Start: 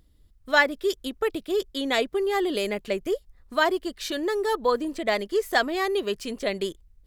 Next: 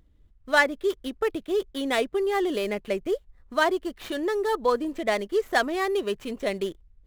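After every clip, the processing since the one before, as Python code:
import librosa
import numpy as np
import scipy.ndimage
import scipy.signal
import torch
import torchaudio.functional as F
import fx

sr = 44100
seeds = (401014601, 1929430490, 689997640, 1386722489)

y = scipy.ndimage.median_filter(x, 9, mode='constant')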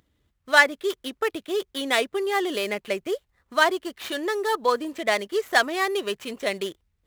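y = scipy.signal.sosfilt(scipy.signal.butter(2, 80.0, 'highpass', fs=sr, output='sos'), x)
y = fx.tilt_shelf(y, sr, db=-5.0, hz=650.0)
y = y * 10.0 ** (1.0 / 20.0)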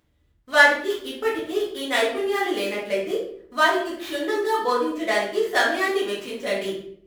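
y = fx.room_shoebox(x, sr, seeds[0], volume_m3=110.0, walls='mixed', distance_m=1.9)
y = y * 10.0 ** (-7.0 / 20.0)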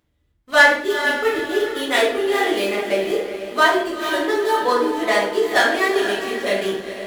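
y = fx.echo_diffused(x, sr, ms=452, feedback_pct=42, wet_db=-9)
y = fx.leveller(y, sr, passes=1)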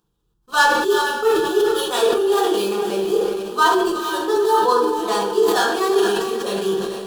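y = fx.fixed_phaser(x, sr, hz=410.0, stages=8)
y = fx.sustainer(y, sr, db_per_s=37.0)
y = y * 10.0 ** (2.5 / 20.0)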